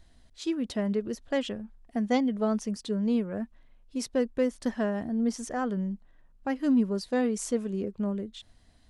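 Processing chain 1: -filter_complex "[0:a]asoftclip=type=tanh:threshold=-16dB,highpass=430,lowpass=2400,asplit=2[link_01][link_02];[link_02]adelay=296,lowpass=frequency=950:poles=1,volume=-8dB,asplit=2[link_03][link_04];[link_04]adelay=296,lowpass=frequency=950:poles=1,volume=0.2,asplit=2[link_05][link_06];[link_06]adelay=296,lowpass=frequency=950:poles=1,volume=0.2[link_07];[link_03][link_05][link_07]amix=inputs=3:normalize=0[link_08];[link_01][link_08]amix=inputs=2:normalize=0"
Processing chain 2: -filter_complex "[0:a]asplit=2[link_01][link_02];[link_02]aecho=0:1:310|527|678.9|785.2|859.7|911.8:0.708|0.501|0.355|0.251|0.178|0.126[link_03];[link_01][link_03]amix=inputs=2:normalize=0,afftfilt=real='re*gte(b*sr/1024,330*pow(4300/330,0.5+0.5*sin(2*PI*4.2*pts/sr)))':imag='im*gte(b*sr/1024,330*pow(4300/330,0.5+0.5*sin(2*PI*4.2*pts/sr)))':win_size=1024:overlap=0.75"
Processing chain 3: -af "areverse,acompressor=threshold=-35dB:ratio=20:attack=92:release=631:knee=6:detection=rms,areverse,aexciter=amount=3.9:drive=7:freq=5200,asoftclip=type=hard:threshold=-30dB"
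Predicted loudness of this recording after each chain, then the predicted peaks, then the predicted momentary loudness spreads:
−36.5, −37.5, −38.5 LKFS; −19.5, −18.0, −30.0 dBFS; 12, 12, 10 LU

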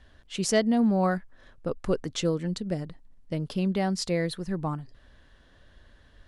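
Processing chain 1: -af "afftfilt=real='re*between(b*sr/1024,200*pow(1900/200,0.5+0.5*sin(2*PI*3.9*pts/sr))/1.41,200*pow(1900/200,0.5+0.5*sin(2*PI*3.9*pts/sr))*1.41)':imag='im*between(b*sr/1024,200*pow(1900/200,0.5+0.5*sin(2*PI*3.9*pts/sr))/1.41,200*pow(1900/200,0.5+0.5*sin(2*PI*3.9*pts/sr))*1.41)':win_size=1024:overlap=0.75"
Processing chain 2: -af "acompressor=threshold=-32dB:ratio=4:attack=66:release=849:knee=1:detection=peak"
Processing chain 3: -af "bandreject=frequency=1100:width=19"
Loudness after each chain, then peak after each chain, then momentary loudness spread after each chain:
−35.5, −35.0, −28.5 LKFS; −17.5, −18.5, −10.5 dBFS; 17, 7, 13 LU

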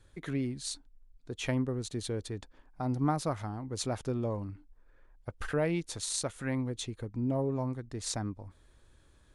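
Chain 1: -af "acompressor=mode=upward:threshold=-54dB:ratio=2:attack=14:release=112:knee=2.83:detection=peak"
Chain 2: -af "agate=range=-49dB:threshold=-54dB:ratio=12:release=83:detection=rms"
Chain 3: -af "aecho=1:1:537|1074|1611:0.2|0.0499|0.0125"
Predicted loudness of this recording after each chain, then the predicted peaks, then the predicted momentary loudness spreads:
−34.5, −34.5, −34.5 LKFS; −14.5, −14.5, −15.0 dBFS; 13, 13, 16 LU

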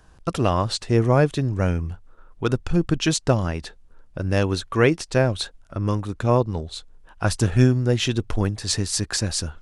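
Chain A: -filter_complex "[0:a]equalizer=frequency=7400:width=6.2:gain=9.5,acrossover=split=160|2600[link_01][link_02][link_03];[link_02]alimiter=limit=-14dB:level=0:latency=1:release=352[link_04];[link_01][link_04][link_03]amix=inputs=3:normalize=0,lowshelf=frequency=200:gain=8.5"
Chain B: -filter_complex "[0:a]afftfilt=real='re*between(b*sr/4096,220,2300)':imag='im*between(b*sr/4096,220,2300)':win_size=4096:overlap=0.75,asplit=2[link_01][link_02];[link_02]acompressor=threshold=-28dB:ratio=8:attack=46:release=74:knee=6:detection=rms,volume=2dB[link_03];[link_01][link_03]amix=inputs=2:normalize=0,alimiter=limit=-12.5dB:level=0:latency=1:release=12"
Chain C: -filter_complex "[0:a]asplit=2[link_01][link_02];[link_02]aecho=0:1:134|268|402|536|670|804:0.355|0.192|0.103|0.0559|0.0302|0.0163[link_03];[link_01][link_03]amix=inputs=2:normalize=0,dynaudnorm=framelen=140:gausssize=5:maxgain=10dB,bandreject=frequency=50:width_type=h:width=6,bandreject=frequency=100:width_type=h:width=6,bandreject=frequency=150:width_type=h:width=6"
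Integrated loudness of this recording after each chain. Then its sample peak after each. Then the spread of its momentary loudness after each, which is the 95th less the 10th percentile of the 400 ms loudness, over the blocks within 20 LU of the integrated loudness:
−20.0, −25.5, −18.0 LKFS; −3.0, −12.5, −1.0 dBFS; 11, 9, 10 LU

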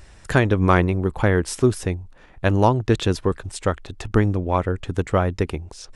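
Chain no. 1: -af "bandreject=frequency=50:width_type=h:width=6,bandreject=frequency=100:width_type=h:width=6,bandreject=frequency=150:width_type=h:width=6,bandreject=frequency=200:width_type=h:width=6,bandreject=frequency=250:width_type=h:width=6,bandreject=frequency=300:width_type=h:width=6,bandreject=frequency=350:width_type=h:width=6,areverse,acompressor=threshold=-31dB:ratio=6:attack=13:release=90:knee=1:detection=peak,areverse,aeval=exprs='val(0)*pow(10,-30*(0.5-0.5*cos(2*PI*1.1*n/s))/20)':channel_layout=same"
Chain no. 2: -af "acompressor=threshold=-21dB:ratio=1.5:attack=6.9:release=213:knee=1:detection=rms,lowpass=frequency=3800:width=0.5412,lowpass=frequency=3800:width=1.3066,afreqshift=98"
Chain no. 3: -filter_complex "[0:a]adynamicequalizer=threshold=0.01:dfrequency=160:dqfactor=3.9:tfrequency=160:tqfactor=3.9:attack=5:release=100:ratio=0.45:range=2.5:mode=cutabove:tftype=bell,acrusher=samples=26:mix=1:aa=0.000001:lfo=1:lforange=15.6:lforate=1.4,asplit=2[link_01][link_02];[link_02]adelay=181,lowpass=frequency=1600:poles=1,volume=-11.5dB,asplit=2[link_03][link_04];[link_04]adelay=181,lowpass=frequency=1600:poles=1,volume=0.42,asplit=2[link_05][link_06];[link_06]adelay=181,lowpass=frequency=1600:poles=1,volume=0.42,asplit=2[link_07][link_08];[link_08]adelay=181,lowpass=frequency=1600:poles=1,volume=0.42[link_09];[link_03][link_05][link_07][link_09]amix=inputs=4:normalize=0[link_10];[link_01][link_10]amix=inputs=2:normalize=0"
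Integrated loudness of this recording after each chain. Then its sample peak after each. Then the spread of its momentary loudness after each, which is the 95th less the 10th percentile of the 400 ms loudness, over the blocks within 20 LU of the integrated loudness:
−38.0, −24.5, −21.5 LKFS; −18.5, −5.0, −3.0 dBFS; 20, 7, 9 LU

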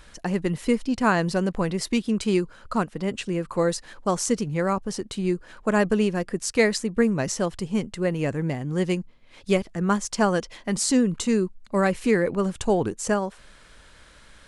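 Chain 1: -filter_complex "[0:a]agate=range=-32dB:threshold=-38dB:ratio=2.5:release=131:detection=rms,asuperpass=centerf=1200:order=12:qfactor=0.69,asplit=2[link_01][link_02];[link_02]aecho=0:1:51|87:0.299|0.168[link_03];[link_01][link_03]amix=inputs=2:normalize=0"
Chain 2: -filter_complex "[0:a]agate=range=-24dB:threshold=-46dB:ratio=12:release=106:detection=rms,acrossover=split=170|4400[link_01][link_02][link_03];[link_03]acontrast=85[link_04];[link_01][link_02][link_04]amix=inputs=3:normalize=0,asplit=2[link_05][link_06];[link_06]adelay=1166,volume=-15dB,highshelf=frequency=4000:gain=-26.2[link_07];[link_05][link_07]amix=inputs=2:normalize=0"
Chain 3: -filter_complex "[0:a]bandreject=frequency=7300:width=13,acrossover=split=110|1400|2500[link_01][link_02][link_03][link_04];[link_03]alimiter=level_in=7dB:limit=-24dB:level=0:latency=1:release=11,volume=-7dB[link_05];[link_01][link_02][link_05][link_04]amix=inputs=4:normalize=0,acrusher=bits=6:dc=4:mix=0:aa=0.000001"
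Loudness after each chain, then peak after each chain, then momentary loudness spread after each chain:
−31.5, −24.0, −25.0 LKFS; −9.5, −4.5, −7.5 dBFS; 15, 8, 6 LU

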